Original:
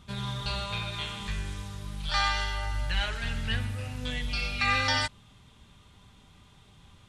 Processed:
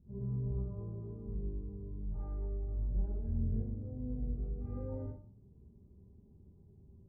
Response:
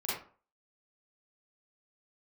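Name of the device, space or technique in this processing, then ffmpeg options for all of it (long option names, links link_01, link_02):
next room: -filter_complex "[0:a]lowpass=frequency=420:width=0.5412,lowpass=frequency=420:width=1.3066[link_01];[1:a]atrim=start_sample=2205[link_02];[link_01][link_02]afir=irnorm=-1:irlink=0,volume=-5dB"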